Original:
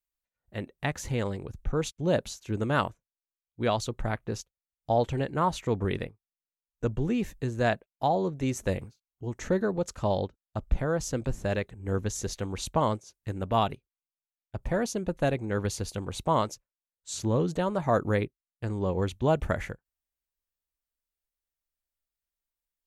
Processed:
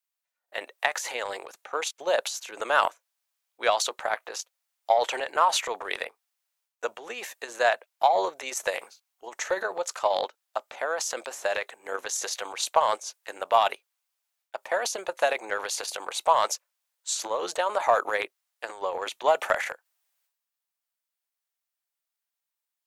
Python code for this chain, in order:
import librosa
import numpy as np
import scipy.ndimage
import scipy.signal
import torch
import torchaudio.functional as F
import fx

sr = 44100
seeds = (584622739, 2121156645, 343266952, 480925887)

p1 = scipy.signal.sosfilt(scipy.signal.butter(4, 630.0, 'highpass', fs=sr, output='sos'), x)
p2 = fx.transient(p1, sr, attack_db=7, sustain_db=11)
p3 = 10.0 ** (-19.5 / 20.0) * np.tanh(p2 / 10.0 ** (-19.5 / 20.0))
y = p2 + F.gain(torch.from_numpy(p3), -6.0).numpy()